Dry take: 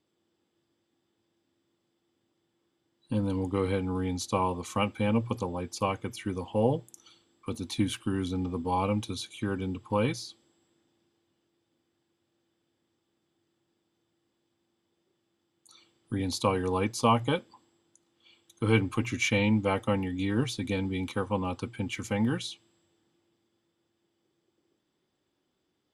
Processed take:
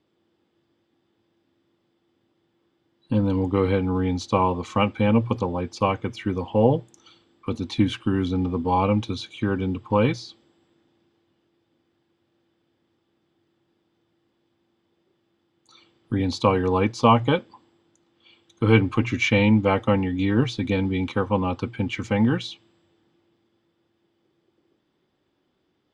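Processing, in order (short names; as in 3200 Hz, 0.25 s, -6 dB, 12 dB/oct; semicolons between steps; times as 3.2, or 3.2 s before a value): air absorption 140 m; gain +7.5 dB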